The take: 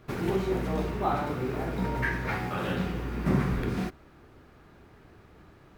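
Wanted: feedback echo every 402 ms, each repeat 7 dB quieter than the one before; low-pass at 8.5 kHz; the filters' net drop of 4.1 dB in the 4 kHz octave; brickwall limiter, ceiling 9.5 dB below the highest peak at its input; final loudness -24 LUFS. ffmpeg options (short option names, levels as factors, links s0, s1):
-af "lowpass=8500,equalizer=f=4000:t=o:g=-5.5,alimiter=limit=0.075:level=0:latency=1,aecho=1:1:402|804|1206|1608|2010:0.447|0.201|0.0905|0.0407|0.0183,volume=2.51"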